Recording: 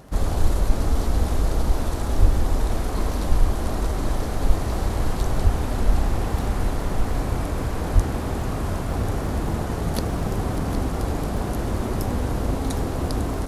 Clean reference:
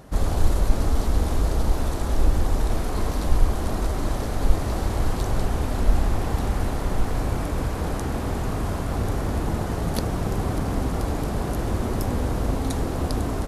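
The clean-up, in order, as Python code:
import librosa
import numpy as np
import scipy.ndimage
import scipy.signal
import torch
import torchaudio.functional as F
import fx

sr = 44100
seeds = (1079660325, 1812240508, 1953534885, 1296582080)

y = fx.fix_declick_ar(x, sr, threshold=6.5)
y = fx.highpass(y, sr, hz=140.0, slope=24, at=(2.19, 2.31), fade=0.02)
y = fx.highpass(y, sr, hz=140.0, slope=24, at=(5.43, 5.55), fade=0.02)
y = fx.highpass(y, sr, hz=140.0, slope=24, at=(7.94, 8.06), fade=0.02)
y = fx.fix_echo_inverse(y, sr, delay_ms=763, level_db=-11.5)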